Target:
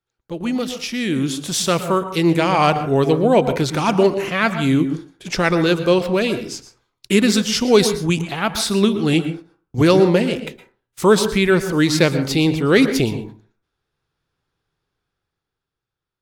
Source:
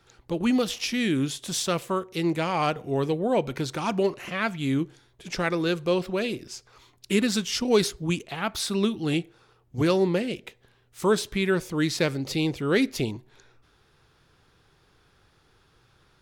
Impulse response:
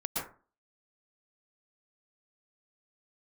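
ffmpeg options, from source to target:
-filter_complex "[0:a]agate=range=-25dB:threshold=-49dB:ratio=16:detection=peak,dynaudnorm=f=160:g=17:m=11.5dB,asplit=2[a][b];[1:a]atrim=start_sample=2205[c];[b][c]afir=irnorm=-1:irlink=0,volume=-13dB[d];[a][d]amix=inputs=2:normalize=0,volume=-1.5dB"

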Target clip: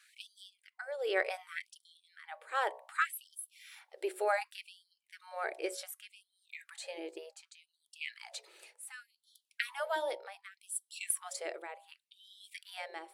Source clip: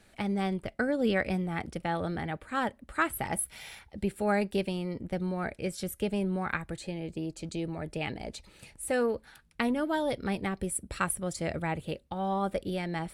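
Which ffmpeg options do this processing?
-af "tremolo=f=0.72:d=0.77,bandreject=f=61.72:t=h:w=4,bandreject=f=123.44:t=h:w=4,bandreject=f=185.16:t=h:w=4,bandreject=f=246.88:t=h:w=4,bandreject=f=308.6:t=h:w=4,bandreject=f=370.32:t=h:w=4,bandreject=f=432.04:t=h:w=4,bandreject=f=493.76:t=h:w=4,bandreject=f=555.48:t=h:w=4,bandreject=f=617.2:t=h:w=4,bandreject=f=678.92:t=h:w=4,bandreject=f=740.64:t=h:w=4,bandreject=f=802.36:t=h:w=4,bandreject=f=864.08:t=h:w=4,bandreject=f=925.8:t=h:w=4,bandreject=f=987.52:t=h:w=4,bandreject=f=1.04924k:t=h:w=4,bandreject=f=1.11096k:t=h:w=4,afftfilt=real='re*gte(b*sr/1024,310*pow(3100/310,0.5+0.5*sin(2*PI*0.67*pts/sr)))':imag='im*gte(b*sr/1024,310*pow(3100/310,0.5+0.5*sin(2*PI*0.67*pts/sr)))':win_size=1024:overlap=0.75"

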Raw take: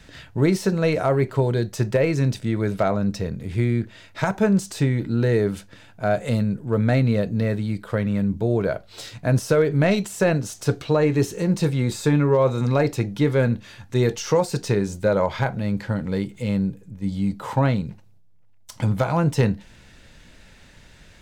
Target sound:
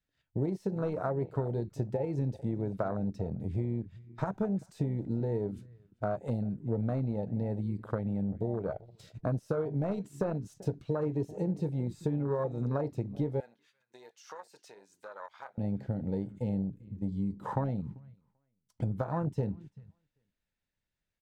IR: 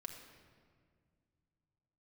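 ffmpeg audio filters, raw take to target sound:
-filter_complex "[0:a]agate=range=-19dB:threshold=-38dB:ratio=16:detection=peak,aeval=exprs='0.398*(cos(1*acos(clip(val(0)/0.398,-1,1)))-cos(1*PI/2))+0.0447*(cos(3*acos(clip(val(0)/0.398,-1,1)))-cos(3*PI/2))+0.00447*(cos(5*acos(clip(val(0)/0.398,-1,1)))-cos(5*PI/2))+0.00562*(cos(7*acos(clip(val(0)/0.398,-1,1)))-cos(7*PI/2))':c=same,acompressor=threshold=-29dB:ratio=5,asplit=2[a][b];[b]adelay=390,lowpass=f=2.5k:p=1,volume=-17dB,asplit=2[c][d];[d]adelay=390,lowpass=f=2.5k:p=1,volume=0.21[e];[a][c][e]amix=inputs=3:normalize=0,afwtdn=0.0178,asettb=1/sr,asplit=3[f][g][h];[f]atrim=end=13.404[i];[g]atrim=start=13.4:end=15.58,asetpts=PTS-STARTPTS,afade=t=in:d=0.004:c=qsin,afade=t=out:st=2.176:d=0.004:c=qsin,highpass=1.3k[j];[h]atrim=start=15.576[k];[i][j]acrossfade=d=0.004:c1=hsin:c2=qsin[l];[l][k]acrossfade=d=0.004:c1=qsin:c2=hsin"

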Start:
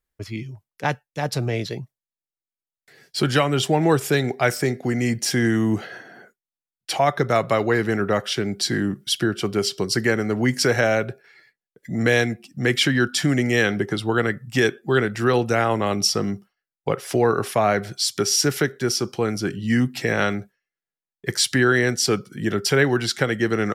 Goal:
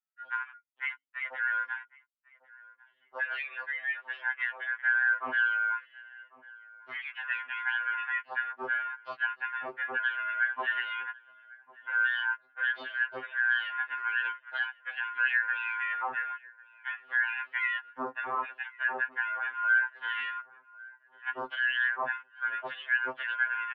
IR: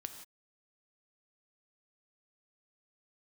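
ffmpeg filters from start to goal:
-filter_complex "[0:a]afftfilt=real='real(if(lt(b,272),68*(eq(floor(b/68),0)*3+eq(floor(b/68),1)*0+eq(floor(b/68),2)*1+eq(floor(b/68),3)*2)+mod(b,68),b),0)':imag='imag(if(lt(b,272),68*(eq(floor(b/68),0)*3+eq(floor(b/68),1)*0+eq(floor(b/68),2)*1+eq(floor(b/68),3)*2)+mod(b,68),b),0)':win_size=2048:overlap=0.75,bandreject=f=60:t=h:w=6,bandreject=f=120:t=h:w=6,bandreject=f=180:t=h:w=6,bandreject=f=240:t=h:w=6,bandreject=f=300:t=h:w=6,bandreject=f=360:t=h:w=6,bandreject=f=420:t=h:w=6,bandreject=f=480:t=h:w=6,afwtdn=0.0501,alimiter=limit=-12.5dB:level=0:latency=1:release=219,acompressor=threshold=-34dB:ratio=2.5,asplit=2[a][b];[b]adelay=1098,lowpass=f=1.6k:p=1,volume=-20.5dB,asplit=2[c][d];[d]adelay=1098,lowpass=f=1.6k:p=1,volume=0.41,asplit=2[e][f];[f]adelay=1098,lowpass=f=1.6k:p=1,volume=0.41[g];[c][e][g]amix=inputs=3:normalize=0[h];[a][h]amix=inputs=2:normalize=0,highpass=f=480:t=q:w=0.5412,highpass=f=480:t=q:w=1.307,lowpass=f=2.9k:t=q:w=0.5176,lowpass=f=2.9k:t=q:w=0.7071,lowpass=f=2.9k:t=q:w=1.932,afreqshift=-150,afftfilt=real='re*2.45*eq(mod(b,6),0)':imag='im*2.45*eq(mod(b,6),0)':win_size=2048:overlap=0.75,volume=3dB"

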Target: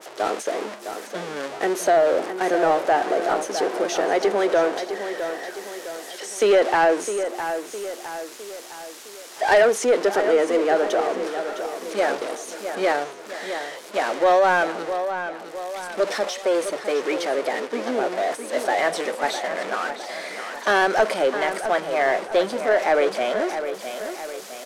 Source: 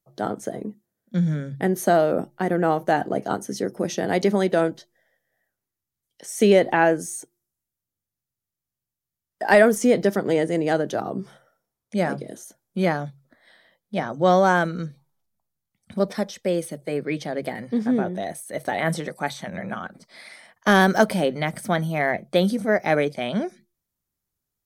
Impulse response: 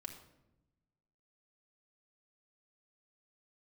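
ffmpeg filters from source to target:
-filter_complex "[0:a]aeval=exprs='val(0)+0.5*0.0631*sgn(val(0))':c=same,lowpass=8.3k,agate=range=-7dB:threshold=-28dB:ratio=16:detection=peak,highpass=f=360:w=0.5412,highpass=f=360:w=1.3066,asplit=2[a][b];[b]aeval=exprs='clip(val(0),-1,0.15)':c=same,volume=-5dB[c];[a][c]amix=inputs=2:normalize=0,aeval=exprs='1.06*(cos(1*acos(clip(val(0)/1.06,-1,1)))-cos(1*PI/2))+0.15*(cos(5*acos(clip(val(0)/1.06,-1,1)))-cos(5*PI/2))':c=same,asplit=2[d][e];[e]adelay=659,lowpass=f=4.6k:p=1,volume=-9dB,asplit=2[f][g];[g]adelay=659,lowpass=f=4.6k:p=1,volume=0.5,asplit=2[h][i];[i]adelay=659,lowpass=f=4.6k:p=1,volume=0.5,asplit=2[j][k];[k]adelay=659,lowpass=f=4.6k:p=1,volume=0.5,asplit=2[l][m];[m]adelay=659,lowpass=f=4.6k:p=1,volume=0.5,asplit=2[n][o];[o]adelay=659,lowpass=f=4.6k:p=1,volume=0.5[p];[f][h][j][l][n][p]amix=inputs=6:normalize=0[q];[d][q]amix=inputs=2:normalize=0,adynamicequalizer=threshold=0.0316:dfrequency=2400:dqfactor=0.7:tfrequency=2400:tqfactor=0.7:attack=5:release=100:ratio=0.375:range=3:mode=cutabove:tftype=highshelf,volume=-6.5dB"

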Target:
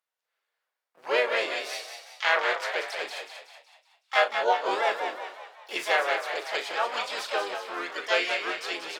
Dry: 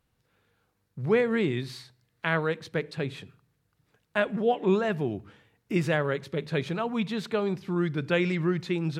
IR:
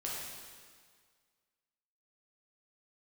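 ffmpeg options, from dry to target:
-filter_complex "[0:a]agate=range=-15dB:threshold=-57dB:ratio=16:detection=peak,highpass=f=570:w=0.5412,highpass=f=570:w=1.3066,asplit=4[a][b][c][d];[b]asetrate=35002,aresample=44100,atempo=1.25992,volume=-12dB[e];[c]asetrate=55563,aresample=44100,atempo=0.793701,volume=-2dB[f];[d]asetrate=88200,aresample=44100,atempo=0.5,volume=-12dB[g];[a][e][f][g]amix=inputs=4:normalize=0,asplit=2[h][i];[i]adelay=37,volume=-10dB[j];[h][j]amix=inputs=2:normalize=0,asplit=7[k][l][m][n][o][p][q];[l]adelay=186,afreqshift=53,volume=-7dB[r];[m]adelay=372,afreqshift=106,volume=-13.6dB[s];[n]adelay=558,afreqshift=159,volume=-20.1dB[t];[o]adelay=744,afreqshift=212,volume=-26.7dB[u];[p]adelay=930,afreqshift=265,volume=-33.2dB[v];[q]adelay=1116,afreqshift=318,volume=-39.8dB[w];[k][r][s][t][u][v][w]amix=inputs=7:normalize=0,volume=2dB"

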